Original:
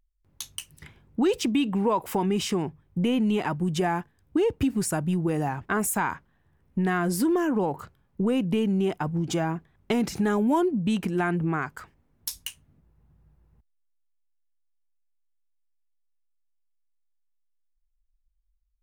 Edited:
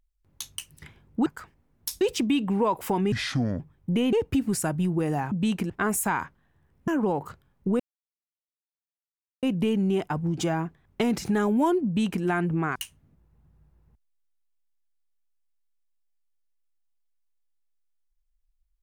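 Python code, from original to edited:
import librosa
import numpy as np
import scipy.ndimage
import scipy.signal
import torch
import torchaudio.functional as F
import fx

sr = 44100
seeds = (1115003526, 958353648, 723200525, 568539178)

y = fx.edit(x, sr, fx.speed_span(start_s=2.37, length_s=0.31, speed=0.65),
    fx.cut(start_s=3.21, length_s=1.2),
    fx.cut(start_s=6.78, length_s=0.63),
    fx.insert_silence(at_s=8.33, length_s=1.63),
    fx.duplicate(start_s=10.76, length_s=0.38, to_s=5.6),
    fx.move(start_s=11.66, length_s=0.75, to_s=1.26), tone=tone)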